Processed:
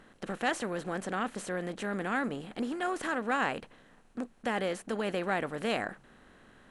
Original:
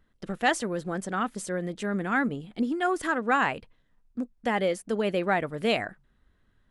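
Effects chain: spectral levelling over time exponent 0.6; trim -8.5 dB

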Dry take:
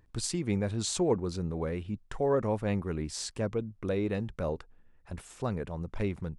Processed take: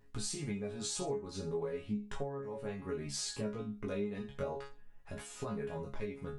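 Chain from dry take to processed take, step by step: chord resonator C#3 fifth, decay 0.28 s; compression 8:1, threshold -50 dBFS, peak gain reduction 22.5 dB; chorus 0.55 Hz, delay 18.5 ms, depth 3.3 ms; trim +18 dB

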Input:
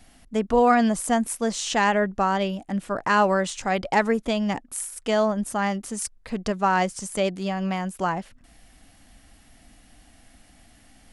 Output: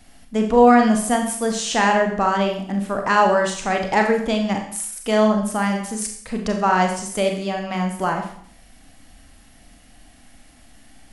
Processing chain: Schroeder reverb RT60 0.59 s, combs from 29 ms, DRR 3 dB; trim +2 dB

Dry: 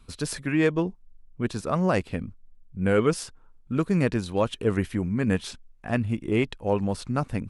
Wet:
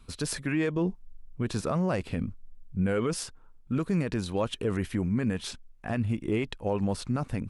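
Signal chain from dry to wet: 0.76–2.87 s: harmonic-percussive split harmonic +5 dB; peak limiter -18.5 dBFS, peak gain reduction 10 dB

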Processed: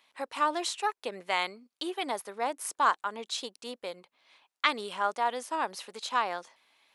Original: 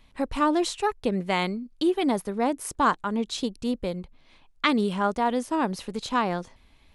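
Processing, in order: high-pass 680 Hz 12 dB/octave; trim -1.5 dB

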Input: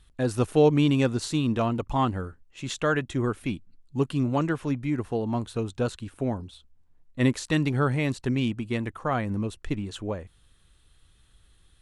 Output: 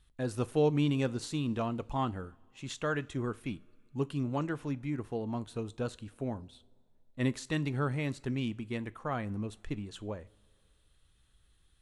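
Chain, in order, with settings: two-slope reverb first 0.29 s, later 2.2 s, from -19 dB, DRR 15.5 dB; trim -8 dB

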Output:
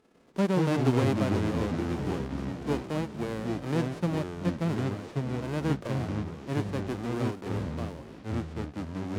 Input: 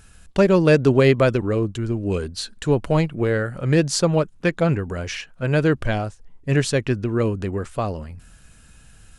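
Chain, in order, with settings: formants flattened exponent 0.1; band-pass filter 280 Hz, Q 1.6; ever faster or slower copies 85 ms, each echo -4 st, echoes 3

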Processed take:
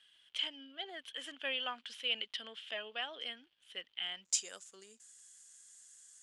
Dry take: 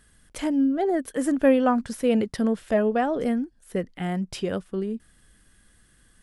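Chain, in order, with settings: high-pass 500 Hz 6 dB/octave; differentiator; crackle 330 per s -66 dBFS; resonant low-pass 3.1 kHz, resonance Q 8.1, from 4.25 s 7 kHz

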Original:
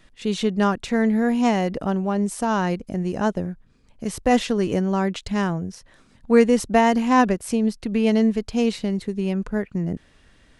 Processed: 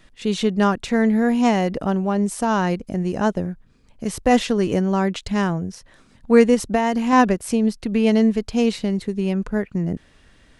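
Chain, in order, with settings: 6.54–7.13 s: compression 5:1, threshold -18 dBFS, peak gain reduction 6.5 dB; trim +2 dB

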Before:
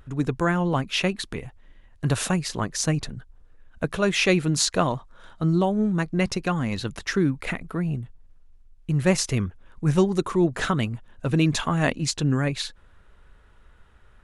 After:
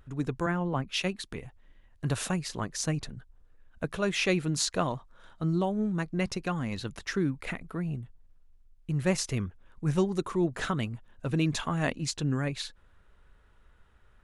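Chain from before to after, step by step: 0.46–1.32 s: three bands expanded up and down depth 70%; trim -6.5 dB

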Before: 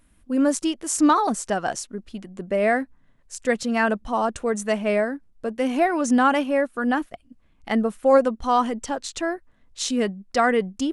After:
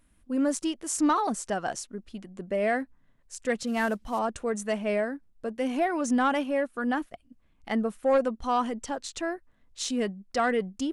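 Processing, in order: 3.67–4.19 s: CVSD coder 64 kbps; saturation -10 dBFS, distortion -21 dB; trim -5 dB

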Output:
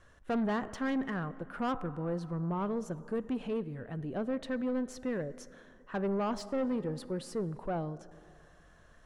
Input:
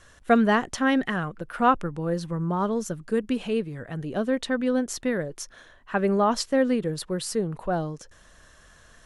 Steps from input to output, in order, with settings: plate-style reverb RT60 2.6 s, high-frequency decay 0.55×, DRR 17.5 dB; saturation -22 dBFS, distortion -10 dB; treble shelf 2.6 kHz -12 dB; trim -5 dB

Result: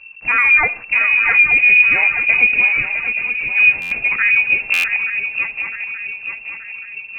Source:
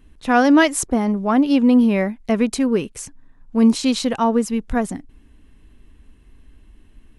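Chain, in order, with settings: pitch shift switched off and on -1.5 st, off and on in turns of 63 ms; bass shelf 370 Hz +5.5 dB; in parallel at +1.5 dB: peak limiter -13.5 dBFS, peak gain reduction 11.5 dB; on the sum: frequency inversion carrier 2.7 kHz; distance through air 200 m; on a send: shuffle delay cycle 877 ms, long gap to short 3:1, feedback 47%, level -7.5 dB; on the sum: algorithmic reverb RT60 0.49 s, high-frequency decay 0.5×, pre-delay 10 ms, DRR 17.5 dB; buffer glitch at 3.81/4.73 s, samples 512, times 8; trim -2 dB

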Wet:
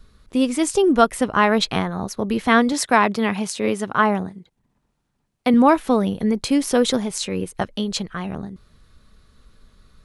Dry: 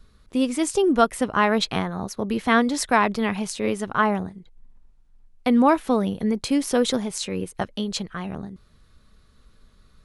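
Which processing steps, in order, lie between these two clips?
2.72–5.54 s: high-pass 110 Hz 12 dB/octave; trim +3 dB

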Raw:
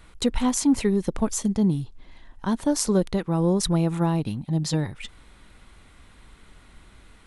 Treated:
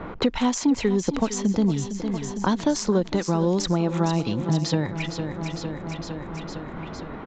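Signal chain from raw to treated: level-controlled noise filter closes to 770 Hz, open at -19.5 dBFS; bass shelf 140 Hz -8.5 dB; in parallel at +1 dB: compression, threshold -32 dBFS, peak gain reduction 14.5 dB; on the sum: wow and flutter 27 cents; on a send: feedback delay 457 ms, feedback 57%, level -13.5 dB; on the sum: resampled via 16 kHz; three bands compressed up and down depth 70%

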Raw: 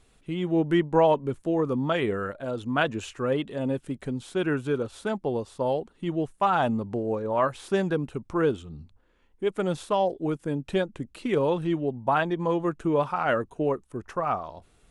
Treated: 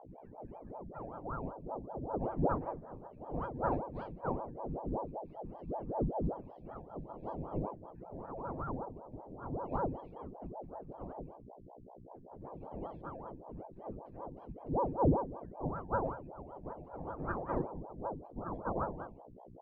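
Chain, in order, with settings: low-pass that closes with the level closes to 2.3 kHz, closed at -20.5 dBFS; ten-band graphic EQ 125 Hz -8 dB, 500 Hz +7 dB, 1 kHz +3 dB, 8 kHz +3 dB; phaser 0.21 Hz, delay 4.5 ms, feedback 67%; hum notches 60/120/180/240/300/360/420/480/540/600 Hz; on a send: reverse echo 225 ms -5.5 dB; on the sum: dynamic bell 1.1 kHz, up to +7 dB, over -40 dBFS, Q 7.9; tape speed -24%; static phaser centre 1.9 kHz, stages 8; pitch-class resonator G#, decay 0.49 s; formant shift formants -5 st; hum 60 Hz, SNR 15 dB; ring modulator with a swept carrier 410 Hz, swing 90%, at 5.2 Hz; trim +6.5 dB

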